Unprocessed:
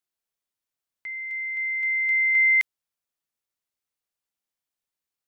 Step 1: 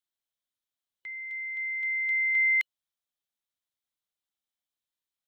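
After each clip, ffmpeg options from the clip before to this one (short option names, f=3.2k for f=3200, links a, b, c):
-af "superequalizer=7b=0.631:13b=2,volume=-5dB"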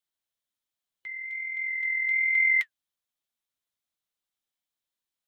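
-af "flanger=delay=3.9:depth=8.3:regen=-54:speed=1.2:shape=triangular,volume=5.5dB"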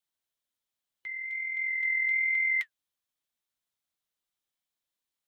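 -af "alimiter=limit=-21.5dB:level=0:latency=1:release=65"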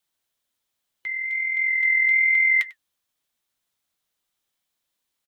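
-af "aecho=1:1:97:0.0944,volume=8.5dB"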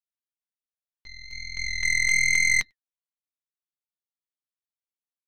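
-af "aeval=exprs='0.237*(cos(1*acos(clip(val(0)/0.237,-1,1)))-cos(1*PI/2))+0.0266*(cos(2*acos(clip(val(0)/0.237,-1,1)))-cos(2*PI/2))+0.075*(cos(3*acos(clip(val(0)/0.237,-1,1)))-cos(3*PI/2))+0.0473*(cos(4*acos(clip(val(0)/0.237,-1,1)))-cos(4*PI/2))+0.0075*(cos(6*acos(clip(val(0)/0.237,-1,1)))-cos(6*PI/2))':c=same"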